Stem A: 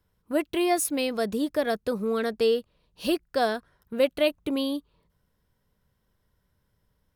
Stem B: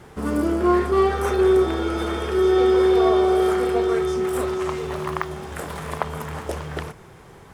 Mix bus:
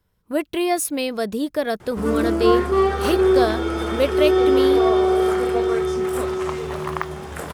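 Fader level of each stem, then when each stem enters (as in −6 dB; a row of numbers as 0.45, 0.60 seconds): +3.0, +0.5 decibels; 0.00, 1.80 seconds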